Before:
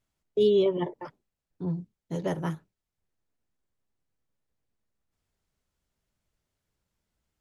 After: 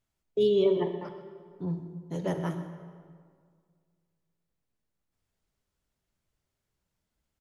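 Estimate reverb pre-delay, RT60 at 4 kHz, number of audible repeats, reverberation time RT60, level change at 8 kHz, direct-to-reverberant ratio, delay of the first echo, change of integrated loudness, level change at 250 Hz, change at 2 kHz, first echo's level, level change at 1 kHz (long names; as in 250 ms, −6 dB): 16 ms, 1.3 s, 1, 1.9 s, can't be measured, 7.0 dB, 126 ms, −1.0 dB, −0.5 dB, −1.5 dB, −15.5 dB, −1.5 dB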